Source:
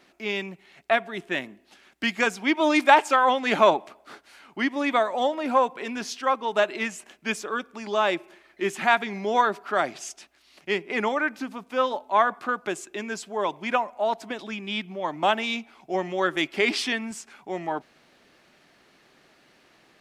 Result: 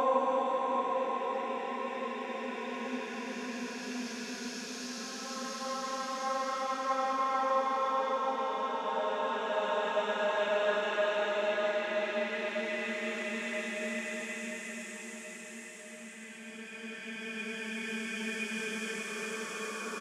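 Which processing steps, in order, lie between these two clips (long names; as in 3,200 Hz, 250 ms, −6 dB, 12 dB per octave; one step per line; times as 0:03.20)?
slap from a distant wall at 31 metres, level −11 dB
on a send at −18 dB: convolution reverb RT60 1.1 s, pre-delay 98 ms
on the sum: extreme stretch with random phases 11×, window 0.50 s, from 0:05.63
level −7.5 dB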